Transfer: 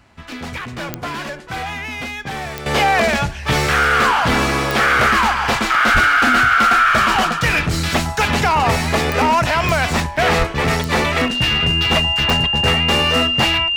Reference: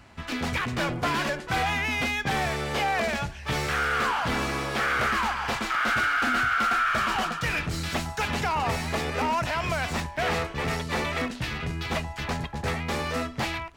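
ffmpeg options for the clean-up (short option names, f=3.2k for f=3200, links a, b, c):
-filter_complex "[0:a]adeclick=t=4,bandreject=f=2.8k:w=30,asplit=3[a][b][c];[a]afade=t=out:st=5.93:d=0.02[d];[b]highpass=f=140:w=0.5412,highpass=f=140:w=1.3066,afade=t=in:st=5.93:d=0.02,afade=t=out:st=6.05:d=0.02[e];[c]afade=t=in:st=6.05:d=0.02[f];[d][e][f]amix=inputs=3:normalize=0,asplit=3[g][h][i];[g]afade=t=out:st=10.38:d=0.02[j];[h]highpass=f=140:w=0.5412,highpass=f=140:w=1.3066,afade=t=in:st=10.38:d=0.02,afade=t=out:st=10.5:d=0.02[k];[i]afade=t=in:st=10.5:d=0.02[l];[j][k][l]amix=inputs=3:normalize=0,asetnsamples=n=441:p=0,asendcmd='2.66 volume volume -11dB',volume=0dB"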